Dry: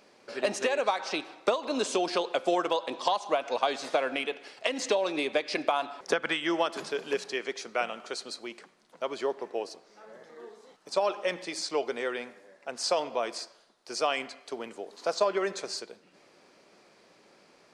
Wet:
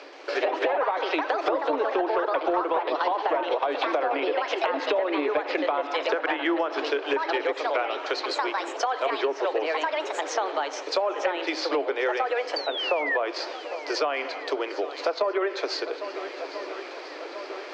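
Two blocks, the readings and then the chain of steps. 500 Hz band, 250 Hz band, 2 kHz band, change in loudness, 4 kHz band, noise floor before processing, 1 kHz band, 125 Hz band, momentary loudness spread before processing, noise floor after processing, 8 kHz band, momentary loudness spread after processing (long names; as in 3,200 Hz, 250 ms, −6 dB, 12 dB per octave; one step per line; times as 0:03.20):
+4.5 dB, +4.0 dB, +5.5 dB, +4.0 dB, +2.5 dB, −61 dBFS, +6.0 dB, below −10 dB, 13 LU, −39 dBFS, −4.0 dB, 8 LU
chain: running median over 5 samples
in parallel at 0 dB: brickwall limiter −21.5 dBFS, peak gain reduction 10 dB
on the sum: delay with pitch and tempo change per echo 127 ms, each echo +4 semitones, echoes 2
sound drawn into the spectrogram fall, 0:12.56–0:13.17, 1,700–4,700 Hz −25 dBFS
high-shelf EQ 3,700 Hz +9.5 dB
reversed playback
upward compression, threshold −37 dBFS
reversed playback
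treble cut that deepens with the level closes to 1,500 Hz, closed at −17 dBFS
Chebyshev high-pass filter 280 Hz, order 8
high-frequency loss of the air 190 metres
feedback echo with a long and a short gap by turns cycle 1,339 ms, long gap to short 1.5 to 1, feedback 63%, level −20 dB
soft clipping −9 dBFS, distortion −30 dB
downward compressor 3 to 1, threshold −33 dBFS, peak gain reduction 11.5 dB
level +8 dB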